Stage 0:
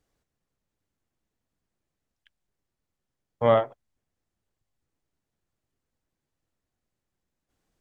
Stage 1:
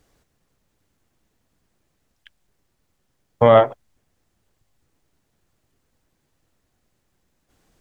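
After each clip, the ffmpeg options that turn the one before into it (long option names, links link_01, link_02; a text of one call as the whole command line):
ffmpeg -i in.wav -af "alimiter=level_in=14.5dB:limit=-1dB:release=50:level=0:latency=1,volume=-1dB" out.wav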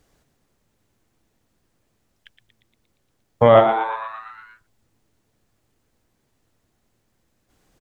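ffmpeg -i in.wav -filter_complex "[0:a]asplit=9[link_01][link_02][link_03][link_04][link_05][link_06][link_07][link_08][link_09];[link_02]adelay=117,afreqshift=110,volume=-9dB[link_10];[link_03]adelay=234,afreqshift=220,volume=-13.2dB[link_11];[link_04]adelay=351,afreqshift=330,volume=-17.3dB[link_12];[link_05]adelay=468,afreqshift=440,volume=-21.5dB[link_13];[link_06]adelay=585,afreqshift=550,volume=-25.6dB[link_14];[link_07]adelay=702,afreqshift=660,volume=-29.8dB[link_15];[link_08]adelay=819,afreqshift=770,volume=-33.9dB[link_16];[link_09]adelay=936,afreqshift=880,volume=-38.1dB[link_17];[link_01][link_10][link_11][link_12][link_13][link_14][link_15][link_16][link_17]amix=inputs=9:normalize=0" out.wav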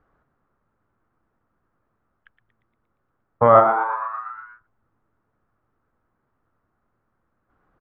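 ffmpeg -i in.wav -af "lowpass=frequency=1300:width_type=q:width=3.7,volume=-4.5dB" out.wav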